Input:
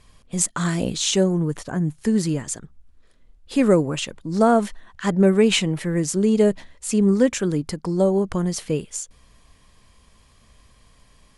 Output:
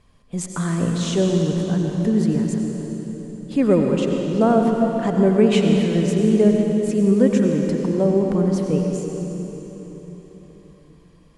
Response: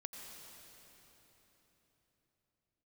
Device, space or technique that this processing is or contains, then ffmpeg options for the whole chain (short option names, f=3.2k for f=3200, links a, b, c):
swimming-pool hall: -filter_complex "[0:a]equalizer=f=260:w=0.33:g=5.5[a];[1:a]atrim=start_sample=2205[b];[a][b]afir=irnorm=-1:irlink=0,highshelf=f=5k:g=-7"